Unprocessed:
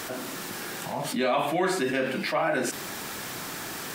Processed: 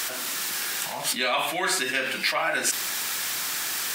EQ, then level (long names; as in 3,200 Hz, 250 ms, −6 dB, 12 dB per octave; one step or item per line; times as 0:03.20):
tilt shelving filter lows −10 dB, about 940 Hz
0.0 dB